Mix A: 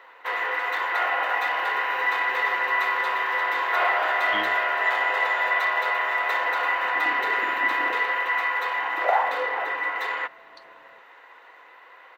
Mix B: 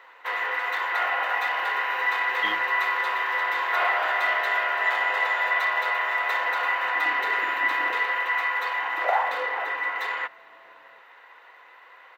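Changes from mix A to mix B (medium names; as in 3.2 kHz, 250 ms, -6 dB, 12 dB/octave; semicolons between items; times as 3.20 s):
speech: entry -1.90 s; master: add bass shelf 490 Hz -7 dB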